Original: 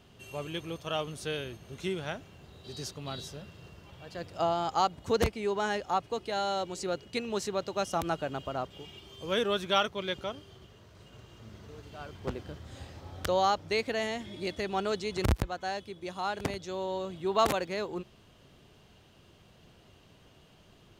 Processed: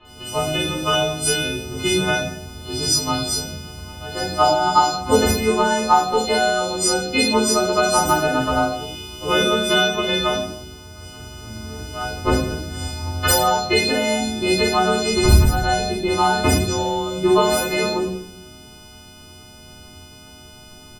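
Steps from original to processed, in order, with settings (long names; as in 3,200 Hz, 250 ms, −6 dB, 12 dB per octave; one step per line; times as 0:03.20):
every partial snapped to a pitch grid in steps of 3 semitones
0:15.11–0:16.62: low-shelf EQ 180 Hz +9 dB
downward compressor 6 to 1, threshold −28 dBFS, peak gain reduction 11.5 dB
transient designer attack +8 dB, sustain +2 dB
multiband delay without the direct sound lows, highs 50 ms, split 3,300 Hz
rectangular room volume 120 cubic metres, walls mixed, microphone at 2.8 metres
level +2.5 dB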